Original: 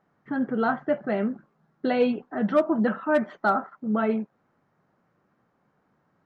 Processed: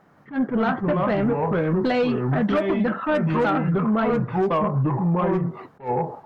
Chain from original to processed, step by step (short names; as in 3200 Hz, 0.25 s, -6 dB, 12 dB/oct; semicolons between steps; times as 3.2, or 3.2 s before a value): 1.08–2.72 high shelf 3400 Hz +6.5 dB; echoes that change speed 0.167 s, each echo -4 st, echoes 2; compressor 5:1, threshold -30 dBFS, peak gain reduction 14.5 dB; sine folder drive 4 dB, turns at -21 dBFS; attack slew limiter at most 240 dB/s; gain +5 dB